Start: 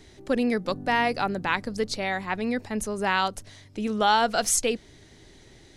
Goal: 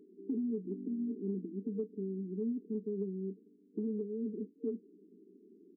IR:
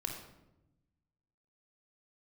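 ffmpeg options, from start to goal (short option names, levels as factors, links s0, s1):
-filter_complex "[0:a]afftfilt=real='re*between(b*sr/4096,180,460)':imag='im*between(b*sr/4096,180,460)':win_size=4096:overlap=0.75,acompressor=threshold=0.0316:ratio=6,asplit=2[s0][s1];[s1]adelay=26,volume=0.211[s2];[s0][s2]amix=inputs=2:normalize=0,volume=0.75"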